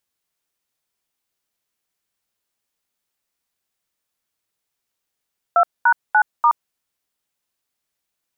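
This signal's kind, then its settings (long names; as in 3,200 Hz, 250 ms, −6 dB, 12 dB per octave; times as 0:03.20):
touch tones "2#9*", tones 73 ms, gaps 220 ms, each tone −13 dBFS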